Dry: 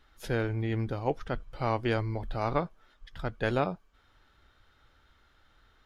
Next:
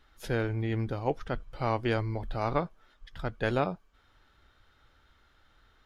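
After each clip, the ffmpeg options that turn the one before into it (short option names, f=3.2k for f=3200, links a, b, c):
-af anull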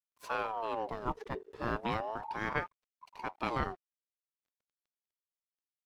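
-af "aeval=exprs='sgn(val(0))*max(abs(val(0))-0.00237,0)':c=same,aeval=exprs='val(0)*sin(2*PI*740*n/s+740*0.45/0.36*sin(2*PI*0.36*n/s))':c=same,volume=-2.5dB"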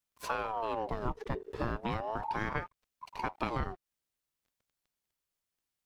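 -af "lowshelf=f=150:g=9.5,acompressor=threshold=-38dB:ratio=6,volume=7.5dB"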